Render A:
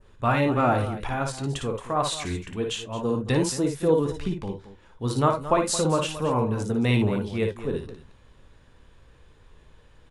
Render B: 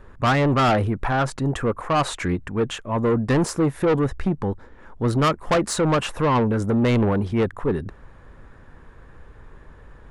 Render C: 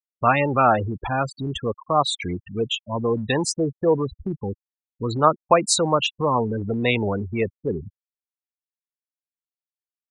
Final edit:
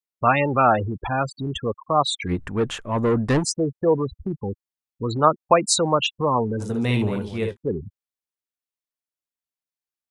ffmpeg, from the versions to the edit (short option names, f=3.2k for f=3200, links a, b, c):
-filter_complex "[2:a]asplit=3[a][b][c];[a]atrim=end=2.32,asetpts=PTS-STARTPTS[d];[1:a]atrim=start=2.26:end=3.44,asetpts=PTS-STARTPTS[e];[b]atrim=start=3.38:end=6.63,asetpts=PTS-STARTPTS[f];[0:a]atrim=start=6.59:end=7.57,asetpts=PTS-STARTPTS[g];[c]atrim=start=7.53,asetpts=PTS-STARTPTS[h];[d][e]acrossfade=d=0.06:c1=tri:c2=tri[i];[i][f]acrossfade=d=0.06:c1=tri:c2=tri[j];[j][g]acrossfade=d=0.04:c1=tri:c2=tri[k];[k][h]acrossfade=d=0.04:c1=tri:c2=tri"